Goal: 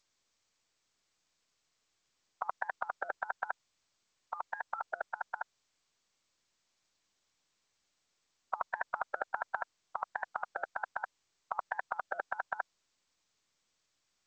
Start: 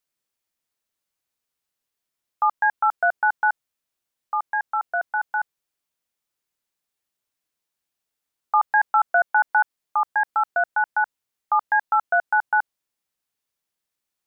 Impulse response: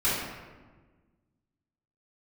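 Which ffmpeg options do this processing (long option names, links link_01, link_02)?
-af "afftfilt=real='re*lt(hypot(re,im),0.282)':imag='im*lt(hypot(re,im),0.282)':win_size=1024:overlap=0.75,volume=1.5dB" -ar 16000 -c:a g722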